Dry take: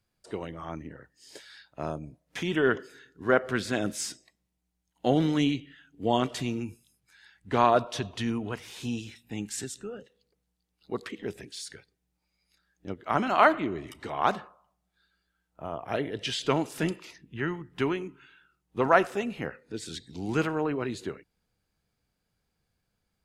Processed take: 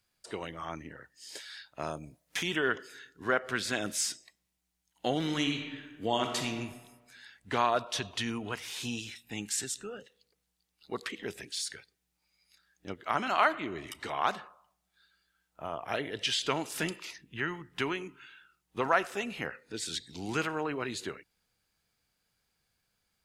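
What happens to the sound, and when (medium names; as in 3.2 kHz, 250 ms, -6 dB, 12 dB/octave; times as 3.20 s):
1.82–2.54 s: treble shelf 7.6 kHz +6.5 dB
5.21–6.48 s: reverb throw, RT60 1.2 s, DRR 5 dB
whole clip: tilt shelf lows -5.5 dB, about 840 Hz; compression 1.5:1, threshold -32 dBFS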